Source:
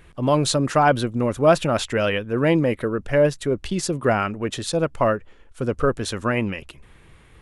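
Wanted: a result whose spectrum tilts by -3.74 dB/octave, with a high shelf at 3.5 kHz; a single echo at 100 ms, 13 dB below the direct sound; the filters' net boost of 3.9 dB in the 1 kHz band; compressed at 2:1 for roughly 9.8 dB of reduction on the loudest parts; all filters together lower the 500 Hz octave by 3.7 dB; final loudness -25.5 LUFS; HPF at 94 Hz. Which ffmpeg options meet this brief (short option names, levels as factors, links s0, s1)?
-af "highpass=94,equalizer=f=500:t=o:g=-7.5,equalizer=f=1000:t=o:g=7,highshelf=f=3500:g=9,acompressor=threshold=0.0355:ratio=2,aecho=1:1:100:0.224,volume=1.33"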